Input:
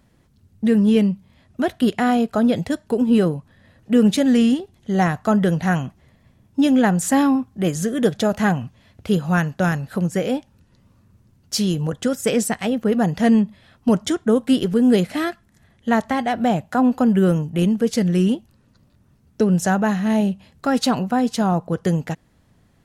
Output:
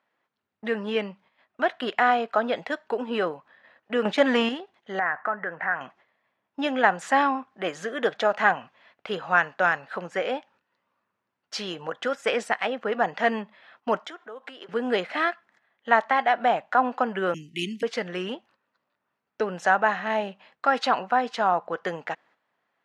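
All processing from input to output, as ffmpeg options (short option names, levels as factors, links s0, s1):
-filter_complex "[0:a]asettb=1/sr,asplit=3[s0][s1][s2];[s0]atrim=end=4.054[s3];[s1]atrim=start=4.05:end=4.49,asetpts=PTS-STARTPTS,afade=t=in:d=0.004:c=qsin,afade=t=out:st=0.436:d=0.004:c=qsin,agate=range=0.355:threshold=0.0794:ratio=16:release=100:detection=peak,acontrast=74[s4];[s2]atrim=start=4.486[s5];[s3][s4]acrossfade=d=0.004:c1=hsin:c2=qsin[s6];[s6][s5]acrossfade=d=0.004:c1=qsin:c2=hsin,asettb=1/sr,asplit=3[s7][s8][s9];[s7]atrim=end=4.994[s10];[s8]atrim=start=4.99:end=5.81,asetpts=PTS-STARTPTS,afade=t=in:d=0.004:c=qsin,afade=t=out:st=0.816:d=0.004:c=qsin,highshelf=f=2600:t=q:w=3:g=-13,acompressor=threshold=0.0562:ratio=3:attack=3.2:release=140:knee=1:detection=peak[s11];[s9]atrim=start=5.806[s12];[s10][s11]acrossfade=d=0.004:c1=hsin:c2=qsin[s13];[s13][s12]acrossfade=d=0.004:c1=qsin:c2=hsin,asettb=1/sr,asplit=3[s14][s15][s16];[s14]atrim=end=13.994[s17];[s15]atrim=start=13.99:end=14.69,asetpts=PTS-STARTPTS,afade=t=in:d=0.004:c=qsin,afade=t=out:st=0.696:d=0.004:c=qsin,acompressor=threshold=0.0316:ratio=5:attack=3.2:release=140:knee=1:detection=peak,highpass=320[s18];[s16]atrim=start=14.686[s19];[s17][s18]acrossfade=d=0.004:c1=hsin:c2=qsin[s20];[s20][s19]acrossfade=d=0.004:c1=qsin:c2=hsin,asettb=1/sr,asplit=3[s21][s22][s23];[s21]atrim=end=17.344[s24];[s22]atrim=start=17.34:end=17.83,asetpts=PTS-STARTPTS,afade=t=in:d=0.004:c=qsin,afade=t=out:st=0.486:d=0.004:c=qsin,asuperstop=centerf=880:order=20:qfactor=0.56,bass=f=250:g=4,treble=f=4000:g=15[s25];[s23]atrim=start=17.826[s26];[s24][s25]acrossfade=d=0.004:c1=hsin:c2=qsin[s27];[s27][s26]acrossfade=d=0.004:c1=qsin:c2=hsin,highpass=820,agate=range=0.316:threshold=0.00112:ratio=16:detection=peak,lowpass=2300,volume=1.78"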